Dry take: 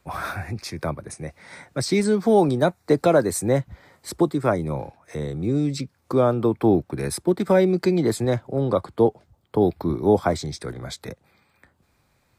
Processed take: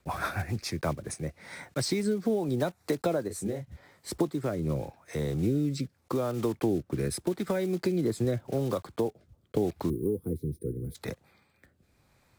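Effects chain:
one scale factor per block 5 bits
0:09.90–0:10.95: gain on a spectral selection 500–8,900 Hz −29 dB
downward compressor 6 to 1, threshold −23 dBFS, peak gain reduction 11 dB
rotating-speaker cabinet horn 7 Hz, later 0.85 Hz, at 0:00.53
0:03.28–0:04.12: micro pitch shift up and down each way 49 cents

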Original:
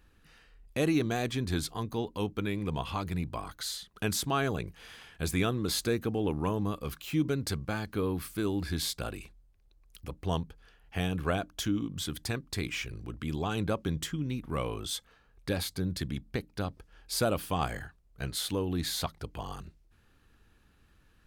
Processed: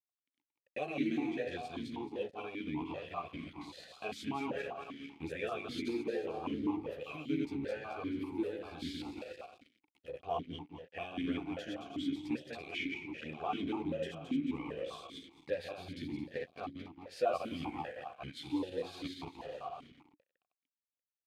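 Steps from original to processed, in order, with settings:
feedback delay that plays each chunk backwards 110 ms, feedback 64%, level −2 dB
in parallel at +2 dB: downward compressor, threshold −38 dBFS, peak gain reduction 16 dB
on the sum: multi-voice chorus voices 6, 0.63 Hz, delay 13 ms, depth 1.4 ms
dead-zone distortion −43 dBFS
formant filter that steps through the vowels 5.1 Hz
level +5 dB

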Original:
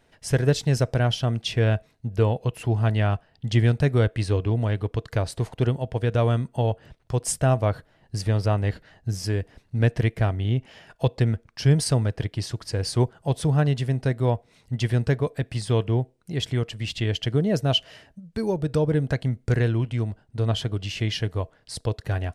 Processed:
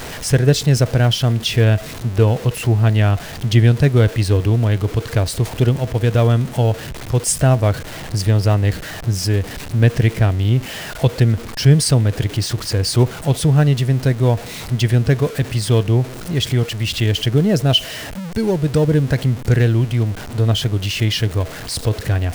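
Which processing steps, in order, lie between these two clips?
converter with a step at zero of −31.5 dBFS
dynamic equaliser 880 Hz, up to −4 dB, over −39 dBFS, Q 0.78
level +7 dB

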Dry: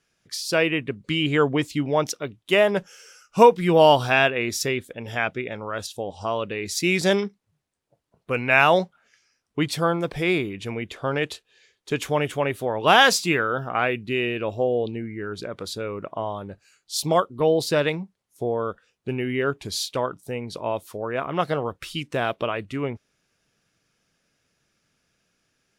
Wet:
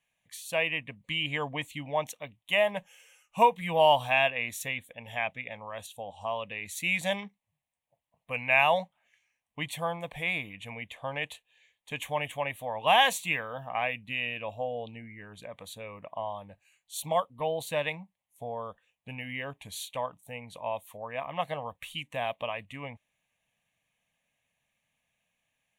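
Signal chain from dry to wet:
low-shelf EQ 300 Hz −9 dB
phaser with its sweep stopped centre 1,400 Hz, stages 6
level −3 dB

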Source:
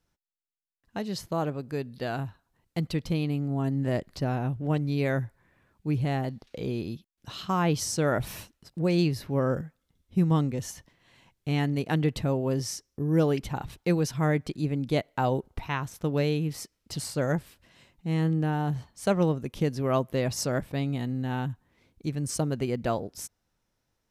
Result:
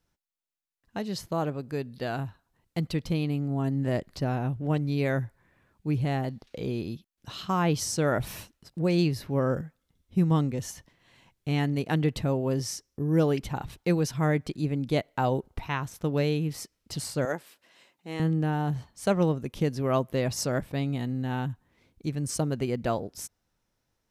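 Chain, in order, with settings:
0:17.25–0:18.20: high-pass filter 370 Hz 12 dB per octave

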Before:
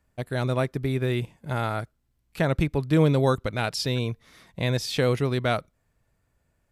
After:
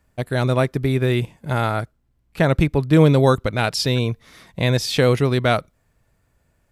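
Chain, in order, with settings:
0:01.71–0:04.12: one half of a high-frequency compander decoder only
level +6.5 dB

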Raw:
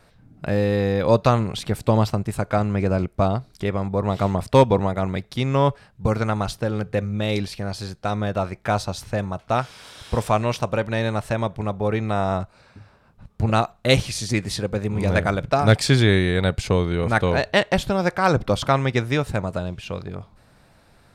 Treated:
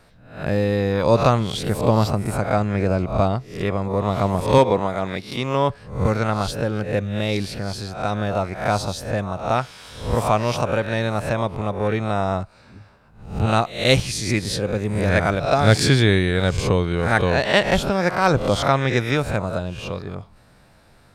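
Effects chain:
peak hold with a rise ahead of every peak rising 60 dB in 0.47 s
0:04.58–0:05.70: high-pass filter 200 Hz 6 dB per octave

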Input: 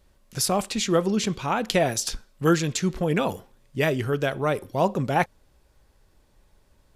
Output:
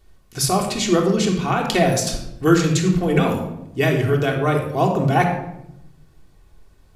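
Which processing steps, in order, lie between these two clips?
rectangular room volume 2,600 cubic metres, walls furnished, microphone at 3.4 metres
level +1.5 dB

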